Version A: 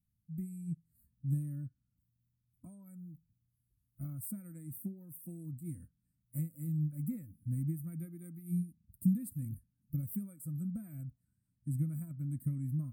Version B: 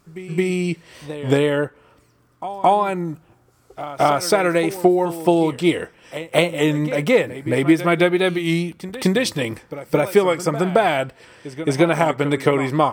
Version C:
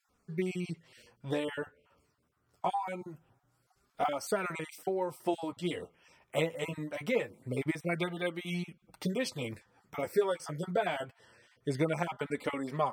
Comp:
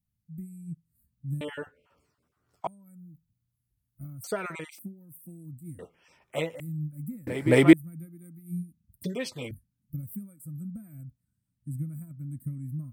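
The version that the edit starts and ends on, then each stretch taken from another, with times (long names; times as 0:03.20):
A
0:01.41–0:02.67: punch in from C
0:04.24–0:04.79: punch in from C
0:05.79–0:06.60: punch in from C
0:07.27–0:07.73: punch in from B
0:09.04–0:09.51: punch in from C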